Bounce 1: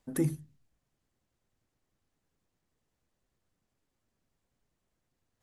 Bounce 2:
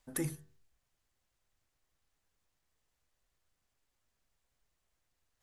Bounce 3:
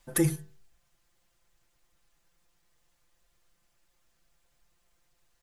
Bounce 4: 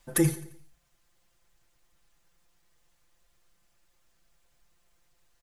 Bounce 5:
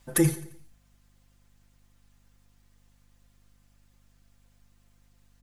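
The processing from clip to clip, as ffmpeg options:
-af "equalizer=f=220:t=o:w=2.7:g=-12,bandreject=f=95.42:t=h:w=4,bandreject=f=190.84:t=h:w=4,bandreject=f=286.26:t=h:w=4,bandreject=f=381.68:t=h:w=4,bandreject=f=477.1:t=h:w=4,bandreject=f=572.52:t=h:w=4,bandreject=f=667.94:t=h:w=4,bandreject=f=763.36:t=h:w=4,bandreject=f=858.78:t=h:w=4,bandreject=f=954.2:t=h:w=4,bandreject=f=1.04962k:t=h:w=4,bandreject=f=1.14504k:t=h:w=4,bandreject=f=1.24046k:t=h:w=4,bandreject=f=1.33588k:t=h:w=4,bandreject=f=1.4313k:t=h:w=4,bandreject=f=1.52672k:t=h:w=4,bandreject=f=1.62214k:t=h:w=4,bandreject=f=1.71756k:t=h:w=4,bandreject=f=1.81298k:t=h:w=4,bandreject=f=1.9084k:t=h:w=4,volume=2.5dB"
-af "aecho=1:1:5.8:0.88,volume=6.5dB"
-af "aecho=1:1:87|174|261|348:0.158|0.0729|0.0335|0.0154,volume=1.5dB"
-af "aeval=exprs='val(0)+0.000631*(sin(2*PI*50*n/s)+sin(2*PI*2*50*n/s)/2+sin(2*PI*3*50*n/s)/3+sin(2*PI*4*50*n/s)/4+sin(2*PI*5*50*n/s)/5)':c=same,volume=1.5dB"

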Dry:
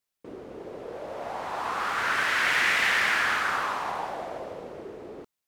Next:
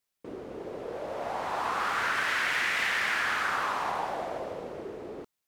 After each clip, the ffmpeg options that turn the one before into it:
-af "acompressor=threshold=-26dB:ratio=6,volume=1dB"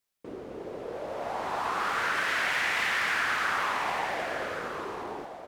-af "aecho=1:1:1120:0.376"

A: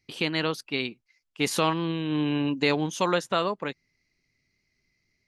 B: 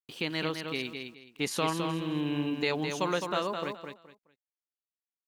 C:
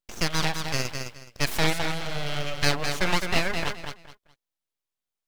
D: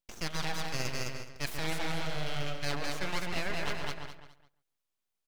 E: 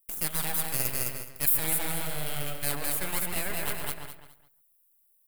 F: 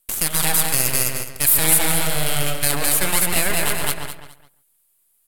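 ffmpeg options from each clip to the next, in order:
-af "aeval=exprs='val(0)*gte(abs(val(0)),0.00422)':c=same,aecho=1:1:211|422|633:0.501|0.12|0.0289,volume=-5.5dB"
-filter_complex "[0:a]equalizer=f=1.7k:t=o:w=1.8:g=12.5,acrossover=split=1500[a][b];[b]crystalizer=i=0.5:c=0[c];[a][c]amix=inputs=2:normalize=0,aeval=exprs='abs(val(0))':c=same,volume=2dB"
-filter_complex "[0:a]areverse,acompressor=threshold=-30dB:ratio=5,areverse,asplit=2[a][b];[b]adelay=138,lowpass=f=2.4k:p=1,volume=-4.5dB,asplit=2[c][d];[d]adelay=138,lowpass=f=2.4k:p=1,volume=0.16,asplit=2[e][f];[f]adelay=138,lowpass=f=2.4k:p=1,volume=0.16[g];[a][c][e][g]amix=inputs=4:normalize=0"
-af "aexciter=amount=14.7:drive=5.7:freq=8.6k"
-af "aemphasis=mode=production:type=cd,adynamicsmooth=sensitivity=7:basefreq=7.3k,alimiter=level_in=13dB:limit=-1dB:release=50:level=0:latency=1,volume=-1dB"

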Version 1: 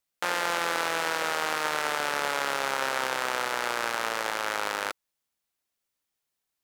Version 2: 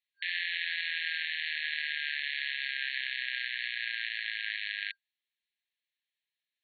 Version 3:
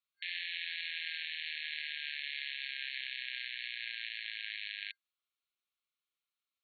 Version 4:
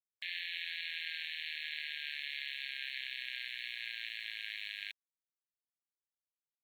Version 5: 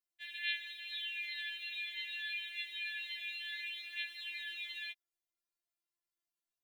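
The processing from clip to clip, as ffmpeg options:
-af "afftfilt=real='re*between(b*sr/4096,1600,4400)':imag='im*between(b*sr/4096,1600,4400)':win_size=4096:overlap=0.75"
-af "superequalizer=10b=3.98:11b=0.447,volume=-4dB"
-af "aeval=exprs='val(0)*gte(abs(val(0)),0.00133)':c=same,volume=-1dB"
-af "afftfilt=real='re*4*eq(mod(b,16),0)':imag='im*4*eq(mod(b,16),0)':win_size=2048:overlap=0.75,volume=2.5dB"

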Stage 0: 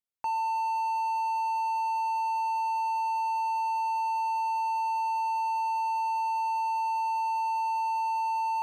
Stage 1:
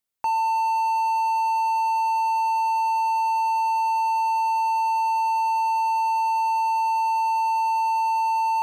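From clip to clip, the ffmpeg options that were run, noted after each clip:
-af "highshelf=f=7.7k:g=4,volume=6.5dB"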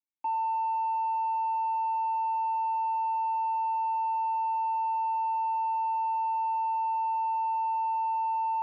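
-filter_complex "[0:a]asplit=3[a][b][c];[a]bandpass=f=300:t=q:w=8,volume=0dB[d];[b]bandpass=f=870:t=q:w=8,volume=-6dB[e];[c]bandpass=f=2.24k:t=q:w=8,volume=-9dB[f];[d][e][f]amix=inputs=3:normalize=0"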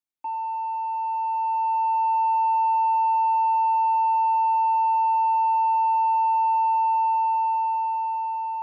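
-af "dynaudnorm=f=440:g=7:m=8dB"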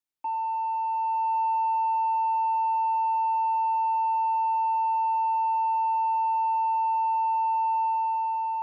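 -af "alimiter=limit=-21.5dB:level=0:latency=1"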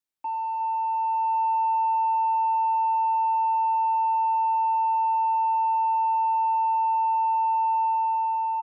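-af "aecho=1:1:361:0.282"

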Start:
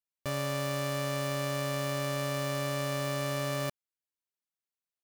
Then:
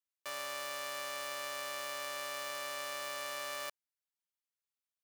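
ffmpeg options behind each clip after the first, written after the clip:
-af "highpass=870,volume=-3dB"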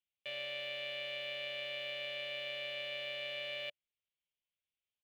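-af "firequalizer=gain_entry='entry(140,0);entry(280,-13);entry(580,-3);entry(1000,-26);entry(2200,0);entry(3200,3);entry(5300,-25);entry(8300,-29)':delay=0.05:min_phase=1,volume=4dB"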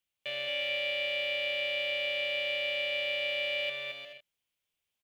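-af "aecho=1:1:220|352|431.2|478.7|507.2:0.631|0.398|0.251|0.158|0.1,volume=6dB"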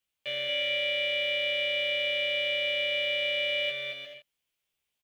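-filter_complex "[0:a]asplit=2[a][b];[b]adelay=15,volume=-2dB[c];[a][c]amix=inputs=2:normalize=0"

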